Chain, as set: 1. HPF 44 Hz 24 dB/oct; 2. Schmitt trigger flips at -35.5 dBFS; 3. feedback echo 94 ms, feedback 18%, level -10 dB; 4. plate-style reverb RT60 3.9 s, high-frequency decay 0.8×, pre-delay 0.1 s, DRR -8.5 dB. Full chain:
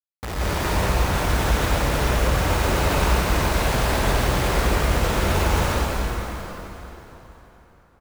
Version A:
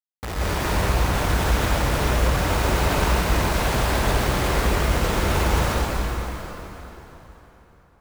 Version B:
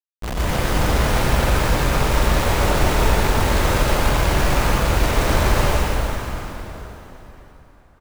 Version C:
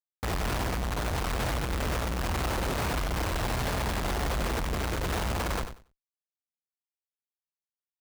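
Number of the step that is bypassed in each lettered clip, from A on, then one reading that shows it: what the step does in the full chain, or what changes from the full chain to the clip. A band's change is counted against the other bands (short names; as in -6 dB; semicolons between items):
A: 3, momentary loudness spread change -2 LU; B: 1, loudness change +2.5 LU; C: 4, momentary loudness spread change -10 LU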